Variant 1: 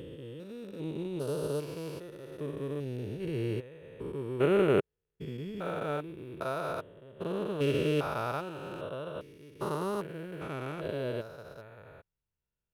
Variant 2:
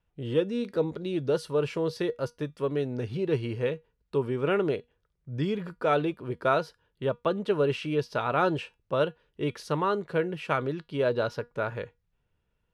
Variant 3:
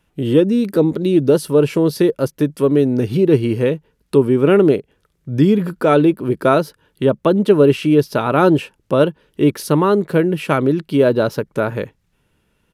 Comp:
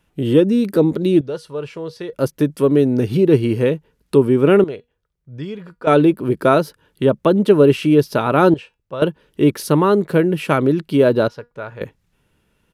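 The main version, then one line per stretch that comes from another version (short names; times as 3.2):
3
1.21–2.13 from 2
4.64–5.87 from 2
8.54–9.02 from 2
11.28–11.81 from 2
not used: 1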